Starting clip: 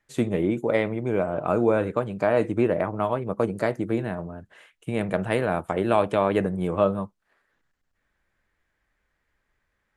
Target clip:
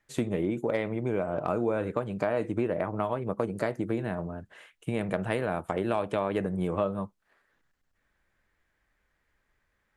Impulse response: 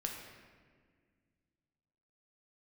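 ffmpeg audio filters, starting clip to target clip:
-af "acompressor=threshold=-26dB:ratio=3,aeval=exprs='clip(val(0),-1,0.106)':c=same"

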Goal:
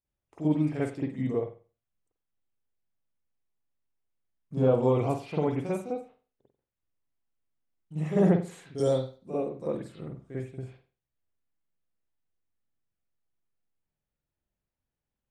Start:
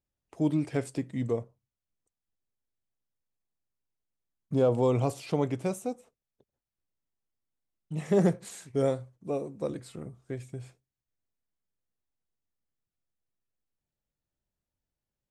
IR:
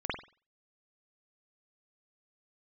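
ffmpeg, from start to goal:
-filter_complex "[0:a]asettb=1/sr,asplit=3[a][b][c];[a]atrim=end=8.784[d];[b]atrim=start=8.78:end=9.18,asetpts=PTS-STARTPTS,afade=t=in:d=0.004:c=qsin,afade=t=out:st=0.396:d=0.004:c=qsin,highshelf=f=3.1k:t=q:w=3:g=11.5[e];[c]atrim=start=9.176[f];[d][e]acrossfade=d=0.004:c1=hsin:c2=qsin[g];[g][f]acrossfade=d=0.004:c1=qsin:c2=hsin[h];[1:a]atrim=start_sample=2205[i];[h][i]afir=irnorm=-1:irlink=0,volume=-5.5dB"

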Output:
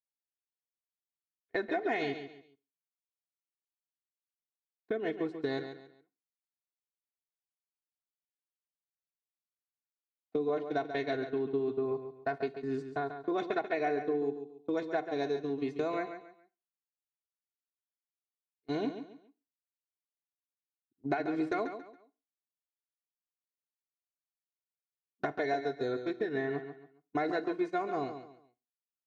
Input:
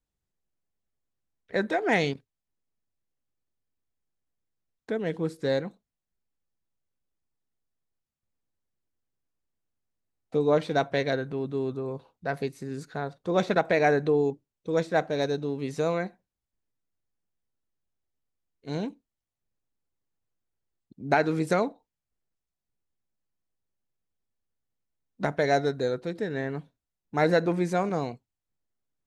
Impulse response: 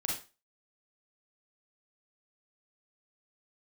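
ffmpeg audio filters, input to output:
-filter_complex "[0:a]highpass=100,lowpass=4k,aecho=1:1:2.8:0.82,acompressor=threshold=-30dB:ratio=8,agate=range=-31dB:threshold=-35dB:ratio=16:detection=peak,aecho=1:1:139|278|417:0.335|0.1|0.0301,asplit=2[a][b];[1:a]atrim=start_sample=2205[c];[b][c]afir=irnorm=-1:irlink=0,volume=-20.5dB[d];[a][d]amix=inputs=2:normalize=0"

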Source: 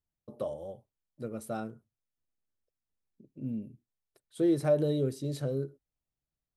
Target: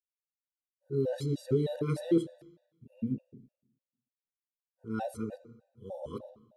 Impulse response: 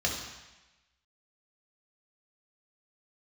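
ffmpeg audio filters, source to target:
-filter_complex "[0:a]areverse,highshelf=f=5.7k:g=-6.5,bandreject=f=60:t=h:w=6,bandreject=f=120:t=h:w=6,bandreject=f=180:t=h:w=6,bandreject=f=240:t=h:w=6,bandreject=f=300:t=h:w=6,bandreject=f=360:t=h:w=6,dynaudnorm=f=180:g=5:m=3.5dB,agate=range=-33dB:threshold=-60dB:ratio=3:detection=peak,asplit=2[a][b];[1:a]atrim=start_sample=2205[c];[b][c]afir=irnorm=-1:irlink=0,volume=-20dB[d];[a][d]amix=inputs=2:normalize=0,afftfilt=real='re*gt(sin(2*PI*3.3*pts/sr)*(1-2*mod(floor(b*sr/1024/490),2)),0)':imag='im*gt(sin(2*PI*3.3*pts/sr)*(1-2*mod(floor(b*sr/1024/490),2)),0)':win_size=1024:overlap=0.75"

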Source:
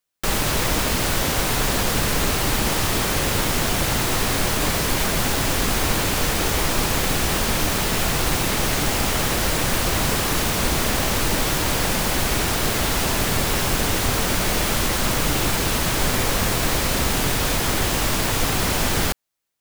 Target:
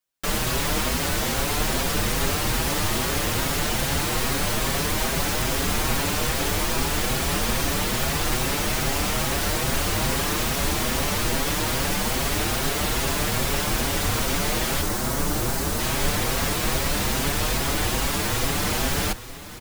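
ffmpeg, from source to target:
-filter_complex "[0:a]asettb=1/sr,asplit=3[a][b][c];[a]atrim=end=14.814[d];[b]atrim=start=14.81:end=15.79,asetpts=PTS-STARTPTS,afade=t=in:d=0.004:c=qsin,afade=t=out:st=0.976:d=0.004:c=qsin,equalizer=f=2.8k:w=0.99:g=-7.5[e];[c]atrim=start=15.786[f];[d][e]acrossfade=d=0.004:c1=hsin:c2=qsin[g];[g][f]acrossfade=d=0.004:c1=qsin:c2=hsin,asplit=2[h][i];[i]aecho=0:1:865|1730|2595|3460|4325:0.158|0.0872|0.0479|0.0264|0.0145[j];[h][j]amix=inputs=2:normalize=0,asplit=2[k][l];[l]adelay=6,afreqshift=2.4[m];[k][m]amix=inputs=2:normalize=1"

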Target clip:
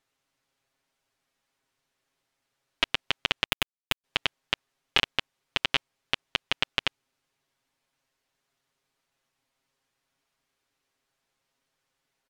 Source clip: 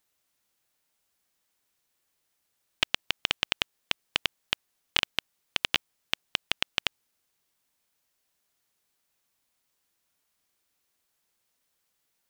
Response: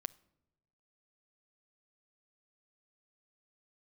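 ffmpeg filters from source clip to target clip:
-filter_complex "[0:a]aemphasis=mode=reproduction:type=50fm,asettb=1/sr,asplit=3[a][b][c];[a]atrim=end=3.454[d];[b]atrim=start=3.45:end=4.04,asetpts=PTS-STARTPTS,afade=t=in:d=0.004:c=qsin,afade=t=out:st=0.586:d=0.004:c=qsin,acrusher=bits=4:dc=4:mix=0:aa=0.000001[e];[c]atrim=start=4.036[f];[d][e]acrossfade=d=0.004:c1=hsin:c2=qsin[g];[g][f]acrossfade=d=0.004:c1=qsin:c2=hsin,aecho=1:1:7.4:0.68,volume=1.5dB"

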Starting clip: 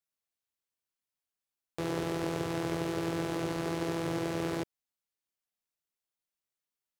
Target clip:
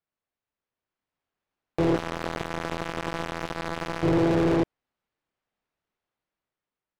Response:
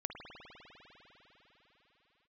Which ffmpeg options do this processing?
-filter_complex "[0:a]dynaudnorm=f=300:g=7:m=6.5dB,asettb=1/sr,asplit=3[a][b][c];[a]atrim=end=1.964[d];[b]atrim=start=1.96:end=4.03,asetpts=PTS-STARTPTS,afade=t=in:d=0.004:c=qsin,afade=t=out:st=2.066:d=0.004:c=qsin,acrusher=bits=2:mix=0:aa=0.5[e];[c]atrim=start=4.026[f];[d][e]acrossfade=d=0.004:c1=hsin:c2=qsin[g];[g][f]acrossfade=d=0.004:c1=qsin:c2=hsin,asoftclip=type=hard:threshold=-24.5dB,adynamicsmooth=sensitivity=4:basefreq=2.3k,volume=8dB" -ar 44100 -c:a libmp3lame -b:a 192k

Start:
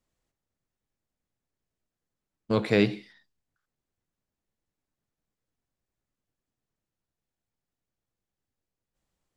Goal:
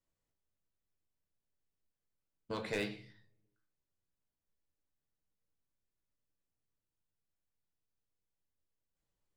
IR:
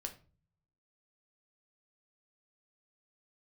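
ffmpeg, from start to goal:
-filter_complex "[0:a]acrossover=split=610[a][b];[a]acompressor=threshold=-30dB:ratio=12[c];[c][b]amix=inputs=2:normalize=0,aeval=exprs='0.133*(abs(mod(val(0)/0.133+3,4)-2)-1)':c=same[d];[1:a]atrim=start_sample=2205[e];[d][e]afir=irnorm=-1:irlink=0,volume=-6dB"

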